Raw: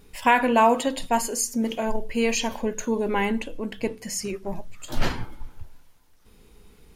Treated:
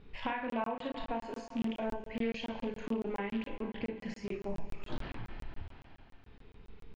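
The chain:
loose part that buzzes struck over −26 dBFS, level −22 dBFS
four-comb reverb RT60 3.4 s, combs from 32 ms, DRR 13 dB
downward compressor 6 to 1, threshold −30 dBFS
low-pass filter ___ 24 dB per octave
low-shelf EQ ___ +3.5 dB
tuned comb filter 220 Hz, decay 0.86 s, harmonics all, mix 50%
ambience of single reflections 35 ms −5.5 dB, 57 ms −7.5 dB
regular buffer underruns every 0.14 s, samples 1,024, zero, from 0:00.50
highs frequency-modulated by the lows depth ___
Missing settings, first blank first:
3,600 Hz, 190 Hz, 0.2 ms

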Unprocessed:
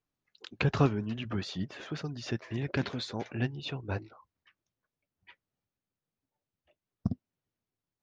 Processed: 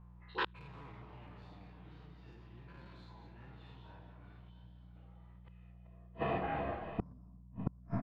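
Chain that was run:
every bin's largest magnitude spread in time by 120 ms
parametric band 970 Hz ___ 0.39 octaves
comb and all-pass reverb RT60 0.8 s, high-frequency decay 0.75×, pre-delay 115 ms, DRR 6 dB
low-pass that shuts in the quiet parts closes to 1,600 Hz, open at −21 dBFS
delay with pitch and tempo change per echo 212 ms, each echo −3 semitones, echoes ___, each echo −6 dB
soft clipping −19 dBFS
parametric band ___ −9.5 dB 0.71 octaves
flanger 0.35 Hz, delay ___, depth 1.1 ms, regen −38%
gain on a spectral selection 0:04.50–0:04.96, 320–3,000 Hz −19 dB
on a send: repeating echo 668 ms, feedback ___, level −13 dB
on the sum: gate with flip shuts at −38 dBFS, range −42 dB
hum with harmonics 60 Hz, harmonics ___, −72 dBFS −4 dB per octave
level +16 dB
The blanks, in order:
+14 dB, 2, 5,900 Hz, 5.7 ms, 27%, 3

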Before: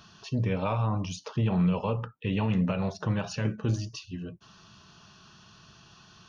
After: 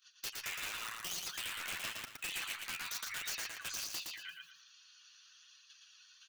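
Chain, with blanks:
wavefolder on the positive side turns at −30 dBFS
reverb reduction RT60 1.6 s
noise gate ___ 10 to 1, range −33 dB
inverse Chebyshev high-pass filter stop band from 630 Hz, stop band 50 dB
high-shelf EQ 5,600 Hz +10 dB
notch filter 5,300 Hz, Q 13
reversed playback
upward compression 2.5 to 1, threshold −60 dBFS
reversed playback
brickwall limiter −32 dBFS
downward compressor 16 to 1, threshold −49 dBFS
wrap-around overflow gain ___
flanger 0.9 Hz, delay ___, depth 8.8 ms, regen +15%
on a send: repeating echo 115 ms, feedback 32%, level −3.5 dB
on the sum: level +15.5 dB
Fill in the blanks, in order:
−50 dBFS, 45 dB, 5 ms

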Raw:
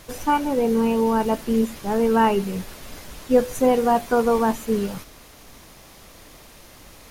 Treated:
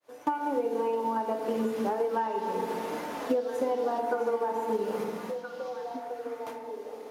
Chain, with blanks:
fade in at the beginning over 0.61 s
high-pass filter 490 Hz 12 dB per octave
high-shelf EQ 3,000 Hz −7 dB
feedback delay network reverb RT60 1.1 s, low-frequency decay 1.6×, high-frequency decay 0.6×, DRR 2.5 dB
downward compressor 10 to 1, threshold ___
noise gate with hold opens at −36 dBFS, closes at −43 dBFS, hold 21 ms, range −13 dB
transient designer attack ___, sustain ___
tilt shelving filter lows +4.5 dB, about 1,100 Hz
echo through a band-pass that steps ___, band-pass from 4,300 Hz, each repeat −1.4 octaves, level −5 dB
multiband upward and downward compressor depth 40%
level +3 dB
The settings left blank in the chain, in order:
−32 dBFS, +3 dB, −1 dB, 661 ms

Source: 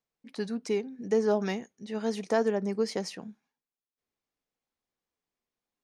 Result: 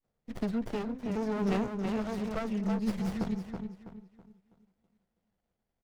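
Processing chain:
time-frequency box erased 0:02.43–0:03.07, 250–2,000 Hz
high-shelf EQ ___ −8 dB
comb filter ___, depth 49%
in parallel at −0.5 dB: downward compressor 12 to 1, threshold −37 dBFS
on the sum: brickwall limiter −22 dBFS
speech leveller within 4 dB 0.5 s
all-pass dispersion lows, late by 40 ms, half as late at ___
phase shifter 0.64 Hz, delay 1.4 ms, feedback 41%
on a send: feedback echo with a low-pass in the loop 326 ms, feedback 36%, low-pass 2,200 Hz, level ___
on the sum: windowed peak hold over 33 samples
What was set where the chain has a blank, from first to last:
7,800 Hz, 1.5 ms, 2,700 Hz, −5 dB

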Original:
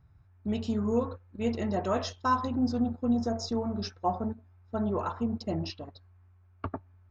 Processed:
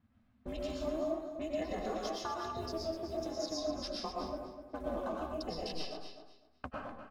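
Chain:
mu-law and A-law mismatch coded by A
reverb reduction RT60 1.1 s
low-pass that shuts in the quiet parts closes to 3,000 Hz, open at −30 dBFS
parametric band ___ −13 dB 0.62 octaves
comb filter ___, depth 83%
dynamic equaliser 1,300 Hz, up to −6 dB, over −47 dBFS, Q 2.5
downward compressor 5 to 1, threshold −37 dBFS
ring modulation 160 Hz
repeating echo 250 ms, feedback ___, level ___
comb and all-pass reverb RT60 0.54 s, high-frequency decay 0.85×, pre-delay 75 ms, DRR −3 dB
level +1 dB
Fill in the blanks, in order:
120 Hz, 2.1 ms, 21%, −9.5 dB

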